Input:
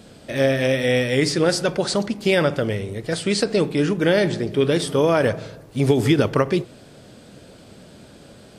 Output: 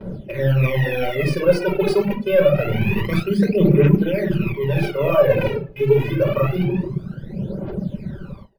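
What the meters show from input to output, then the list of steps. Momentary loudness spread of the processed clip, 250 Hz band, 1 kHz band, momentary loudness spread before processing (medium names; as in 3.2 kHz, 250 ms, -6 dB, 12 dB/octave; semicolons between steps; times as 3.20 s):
13 LU, +1.5 dB, -1.0 dB, 7 LU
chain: rattle on loud lows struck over -33 dBFS, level -15 dBFS; treble shelf 2.3 kHz -11 dB; comb 5.2 ms, depth 52%; careless resampling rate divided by 3×, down filtered, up hold; simulated room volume 3100 m³, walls furnished, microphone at 4.9 m; reverse; compression 8:1, threshold -20 dBFS, peak gain reduction 16 dB; reverse; phaser 0.26 Hz, delay 2.4 ms, feedback 61%; level rider gain up to 3 dB; reverb removal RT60 1.3 s; gate with hold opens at -31 dBFS; treble shelf 5.5 kHz -8 dB; tape noise reduction on one side only decoder only; trim +3.5 dB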